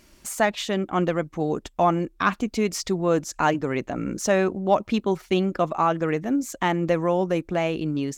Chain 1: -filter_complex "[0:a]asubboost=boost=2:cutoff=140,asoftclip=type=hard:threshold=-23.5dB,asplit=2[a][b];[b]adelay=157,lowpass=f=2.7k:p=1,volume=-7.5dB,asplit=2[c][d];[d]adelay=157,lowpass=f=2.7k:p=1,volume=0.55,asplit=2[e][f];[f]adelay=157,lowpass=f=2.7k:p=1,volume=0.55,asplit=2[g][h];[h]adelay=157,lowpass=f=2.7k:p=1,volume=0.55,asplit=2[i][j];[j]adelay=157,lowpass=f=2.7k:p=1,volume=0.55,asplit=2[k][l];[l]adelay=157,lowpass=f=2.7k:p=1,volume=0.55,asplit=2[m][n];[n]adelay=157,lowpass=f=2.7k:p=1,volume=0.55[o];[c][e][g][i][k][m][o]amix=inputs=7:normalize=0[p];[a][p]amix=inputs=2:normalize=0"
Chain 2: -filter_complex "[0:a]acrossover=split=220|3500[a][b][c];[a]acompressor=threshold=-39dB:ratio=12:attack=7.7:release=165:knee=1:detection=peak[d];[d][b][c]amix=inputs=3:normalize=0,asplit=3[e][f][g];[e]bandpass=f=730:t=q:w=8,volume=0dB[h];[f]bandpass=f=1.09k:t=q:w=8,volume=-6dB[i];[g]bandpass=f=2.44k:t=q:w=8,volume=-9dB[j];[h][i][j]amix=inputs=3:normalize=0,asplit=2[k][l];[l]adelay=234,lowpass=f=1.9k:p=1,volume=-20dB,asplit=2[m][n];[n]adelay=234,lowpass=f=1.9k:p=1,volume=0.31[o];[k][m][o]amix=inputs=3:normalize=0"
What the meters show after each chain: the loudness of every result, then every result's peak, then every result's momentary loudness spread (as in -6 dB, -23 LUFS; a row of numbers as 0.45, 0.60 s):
-28.0, -34.0 LUFS; -18.5, -14.0 dBFS; 2, 13 LU